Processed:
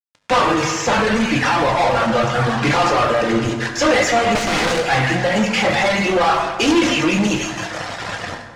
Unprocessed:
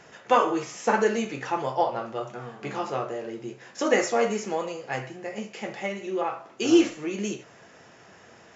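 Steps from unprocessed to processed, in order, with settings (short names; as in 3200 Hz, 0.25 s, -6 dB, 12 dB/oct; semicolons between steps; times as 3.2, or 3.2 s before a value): bell 380 Hz -15 dB 0.27 oct; notches 50/100/150/200/250/300/350/400/450/500 Hz; thin delay 0.164 s, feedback 51%, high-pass 1800 Hz, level -10.5 dB; AGC gain up to 15.5 dB; fuzz box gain 38 dB, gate -36 dBFS; reverb removal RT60 1.8 s; 4.35–4.83 wrapped overs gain 15 dB; air absorption 91 m; on a send at -3 dB: reverb RT60 1.7 s, pre-delay 5 ms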